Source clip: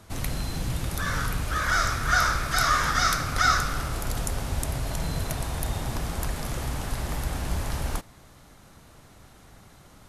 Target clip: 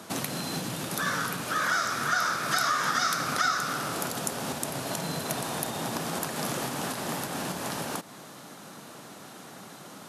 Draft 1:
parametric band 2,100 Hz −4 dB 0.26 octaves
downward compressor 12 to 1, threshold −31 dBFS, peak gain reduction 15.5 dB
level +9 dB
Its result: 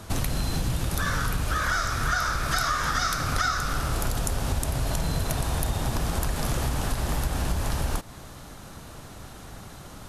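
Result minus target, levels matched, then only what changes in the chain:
125 Hz band +9.5 dB
add after downward compressor: high-pass filter 170 Hz 24 dB per octave

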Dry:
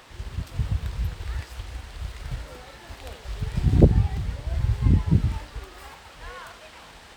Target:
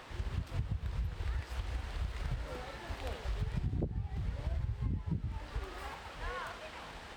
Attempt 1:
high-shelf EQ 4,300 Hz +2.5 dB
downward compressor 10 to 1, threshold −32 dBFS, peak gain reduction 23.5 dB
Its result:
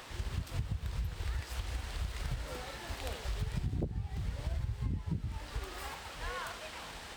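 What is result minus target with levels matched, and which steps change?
8,000 Hz band +8.0 dB
change: high-shelf EQ 4,300 Hz −9 dB

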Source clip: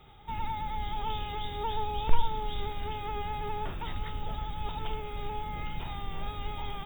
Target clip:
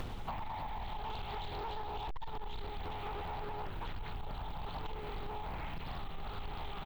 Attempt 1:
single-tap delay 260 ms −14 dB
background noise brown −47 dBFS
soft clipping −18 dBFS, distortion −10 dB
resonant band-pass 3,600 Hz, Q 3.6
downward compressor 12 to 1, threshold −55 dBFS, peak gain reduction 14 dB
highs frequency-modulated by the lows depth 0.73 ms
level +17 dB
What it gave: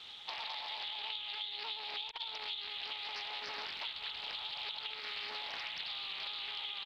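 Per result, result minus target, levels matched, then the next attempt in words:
4,000 Hz band +10.5 dB; soft clipping: distortion −6 dB
single-tap delay 260 ms −14 dB
background noise brown −47 dBFS
soft clipping −18 dBFS, distortion −10 dB
downward compressor 12 to 1, threshold −55 dBFS, peak gain reduction 33.5 dB
highs frequency-modulated by the lows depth 0.73 ms
level +17 dB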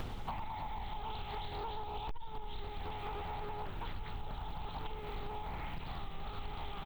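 soft clipping: distortion −6 dB
single-tap delay 260 ms −14 dB
background noise brown −47 dBFS
soft clipping −27.5 dBFS, distortion −4 dB
downward compressor 12 to 1, threshold −55 dBFS, peak gain reduction 25 dB
highs frequency-modulated by the lows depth 0.73 ms
level +17 dB

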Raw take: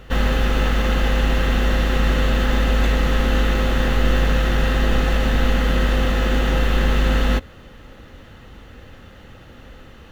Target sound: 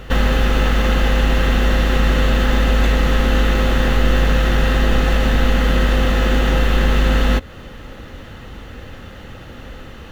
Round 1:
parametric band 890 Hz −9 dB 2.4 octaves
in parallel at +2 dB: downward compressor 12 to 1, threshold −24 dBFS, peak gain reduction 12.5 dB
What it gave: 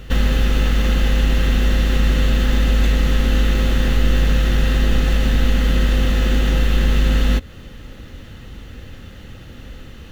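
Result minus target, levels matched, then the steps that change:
1,000 Hz band −7.0 dB
remove: parametric band 890 Hz −9 dB 2.4 octaves

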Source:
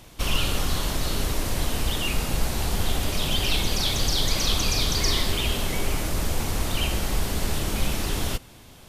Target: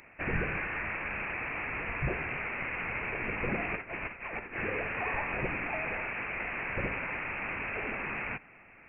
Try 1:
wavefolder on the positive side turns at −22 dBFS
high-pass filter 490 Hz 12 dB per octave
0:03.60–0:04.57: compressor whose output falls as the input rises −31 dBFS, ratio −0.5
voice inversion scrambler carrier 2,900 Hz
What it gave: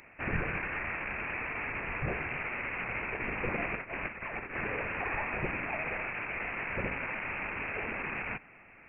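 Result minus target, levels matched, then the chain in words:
wavefolder on the positive side: distortion +26 dB
wavefolder on the positive side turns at −13 dBFS
high-pass filter 490 Hz 12 dB per octave
0:03.60–0:04.57: compressor whose output falls as the input rises −31 dBFS, ratio −0.5
voice inversion scrambler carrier 2,900 Hz

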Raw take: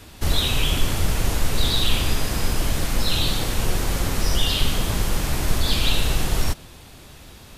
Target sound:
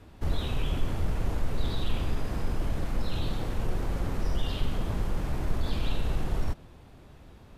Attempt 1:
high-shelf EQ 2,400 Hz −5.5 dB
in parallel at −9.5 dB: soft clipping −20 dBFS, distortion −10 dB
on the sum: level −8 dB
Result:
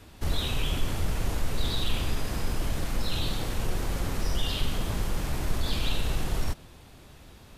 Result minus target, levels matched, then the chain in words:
4,000 Hz band +6.5 dB
high-shelf EQ 2,400 Hz −17.5 dB
in parallel at −9.5 dB: soft clipping −20 dBFS, distortion −10 dB
on the sum: level −8 dB

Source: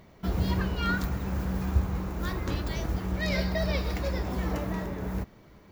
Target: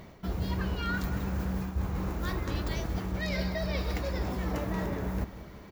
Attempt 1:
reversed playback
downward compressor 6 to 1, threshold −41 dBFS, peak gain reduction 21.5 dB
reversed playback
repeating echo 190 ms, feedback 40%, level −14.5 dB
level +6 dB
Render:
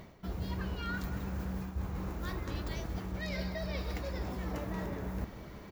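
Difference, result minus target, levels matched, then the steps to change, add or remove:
downward compressor: peak gain reduction +5.5 dB
change: downward compressor 6 to 1, threshold −34.5 dBFS, peak gain reduction 16 dB

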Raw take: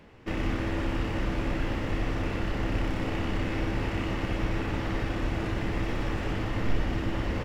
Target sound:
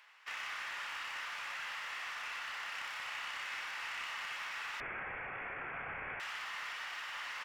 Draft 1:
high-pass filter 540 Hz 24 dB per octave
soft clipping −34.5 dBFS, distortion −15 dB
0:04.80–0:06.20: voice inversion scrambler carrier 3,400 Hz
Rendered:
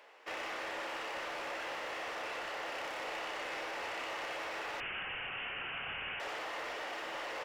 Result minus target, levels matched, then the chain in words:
500 Hz band +11.0 dB
high-pass filter 1,100 Hz 24 dB per octave
soft clipping −34.5 dBFS, distortion −18 dB
0:04.80–0:06.20: voice inversion scrambler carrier 3,400 Hz

